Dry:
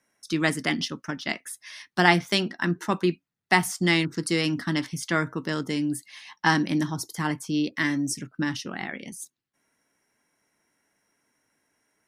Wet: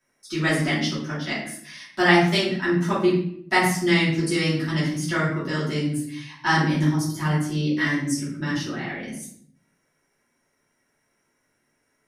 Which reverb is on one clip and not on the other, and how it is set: simulated room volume 110 m³, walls mixed, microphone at 2.8 m; trim -8.5 dB

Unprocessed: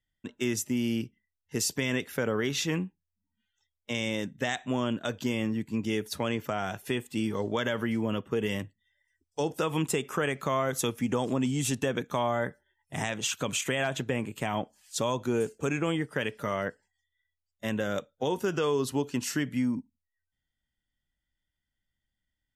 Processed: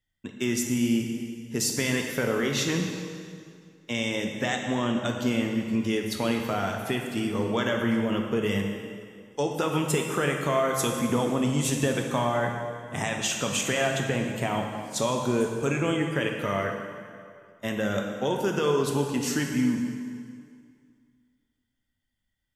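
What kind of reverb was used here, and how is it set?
plate-style reverb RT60 2.2 s, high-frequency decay 0.85×, DRR 2 dB; trim +1.5 dB

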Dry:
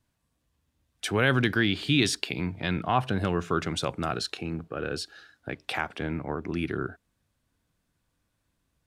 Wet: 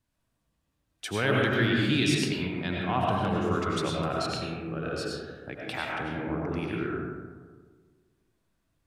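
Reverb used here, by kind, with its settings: algorithmic reverb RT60 1.6 s, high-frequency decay 0.35×, pre-delay 60 ms, DRR -3 dB; trim -5 dB

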